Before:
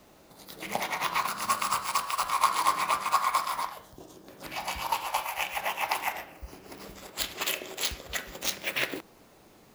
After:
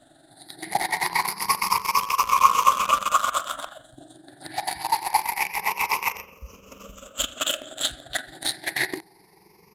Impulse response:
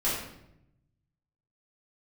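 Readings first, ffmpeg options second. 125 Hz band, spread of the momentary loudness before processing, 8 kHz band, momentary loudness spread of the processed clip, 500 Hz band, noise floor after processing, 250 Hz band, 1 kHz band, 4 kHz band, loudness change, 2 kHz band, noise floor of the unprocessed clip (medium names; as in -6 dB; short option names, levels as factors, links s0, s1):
+2.5 dB, 19 LU, +5.5 dB, 16 LU, +2.5 dB, -56 dBFS, +3.0 dB, +6.0 dB, +5.0 dB, +5.5 dB, +5.0 dB, -57 dBFS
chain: -filter_complex "[0:a]afftfilt=real='re*pow(10,20/40*sin(2*PI*(0.82*log(max(b,1)*sr/1024/100)/log(2)-(0.25)*(pts-256)/sr)))':imag='im*pow(10,20/40*sin(2*PI*(0.82*log(max(b,1)*sr/1024/100)/log(2)-(0.25)*(pts-256)/sr)))':win_size=1024:overlap=0.75,equalizer=f=9700:w=7.1:g=5,asplit=2[s0][s1];[s1]acrusher=bits=3:mix=0:aa=0.000001,volume=0.562[s2];[s0][s2]amix=inputs=2:normalize=0,tremolo=f=23:d=0.462,aresample=32000,aresample=44100,volume=0.841"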